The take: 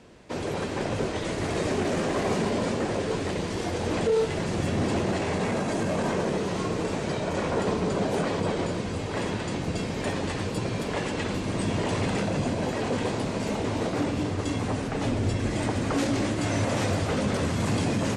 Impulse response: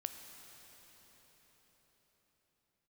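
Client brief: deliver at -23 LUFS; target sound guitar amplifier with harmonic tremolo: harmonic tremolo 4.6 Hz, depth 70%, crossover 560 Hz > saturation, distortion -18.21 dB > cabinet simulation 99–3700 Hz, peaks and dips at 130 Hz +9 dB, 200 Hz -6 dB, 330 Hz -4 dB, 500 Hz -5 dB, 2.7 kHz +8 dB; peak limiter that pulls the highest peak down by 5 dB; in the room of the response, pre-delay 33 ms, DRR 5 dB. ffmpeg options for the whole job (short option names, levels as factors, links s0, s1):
-filter_complex "[0:a]alimiter=limit=0.106:level=0:latency=1,asplit=2[s0][s1];[1:a]atrim=start_sample=2205,adelay=33[s2];[s1][s2]afir=irnorm=-1:irlink=0,volume=0.668[s3];[s0][s3]amix=inputs=2:normalize=0,acrossover=split=560[s4][s5];[s4]aeval=exprs='val(0)*(1-0.7/2+0.7/2*cos(2*PI*4.6*n/s))':c=same[s6];[s5]aeval=exprs='val(0)*(1-0.7/2-0.7/2*cos(2*PI*4.6*n/s))':c=same[s7];[s6][s7]amix=inputs=2:normalize=0,asoftclip=threshold=0.0631,highpass=99,equalizer=f=130:t=q:w=4:g=9,equalizer=f=200:t=q:w=4:g=-6,equalizer=f=330:t=q:w=4:g=-4,equalizer=f=500:t=q:w=4:g=-5,equalizer=f=2700:t=q:w=4:g=8,lowpass=f=3700:w=0.5412,lowpass=f=3700:w=1.3066,volume=3.35"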